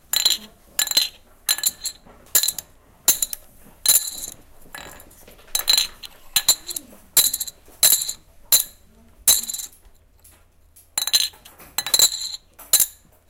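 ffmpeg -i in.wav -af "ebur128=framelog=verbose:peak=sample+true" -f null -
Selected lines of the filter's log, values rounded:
Integrated loudness:
  I:         -18.8 LUFS
  Threshold: -30.3 LUFS
Loudness range:
  LRA:         3.3 LU
  Threshold: -40.5 LUFS
  LRA low:   -22.1 LUFS
  LRA high:  -18.8 LUFS
Sample peak:
  Peak:       -7.0 dBFS
True peak:
  Peak:       -4.0 dBFS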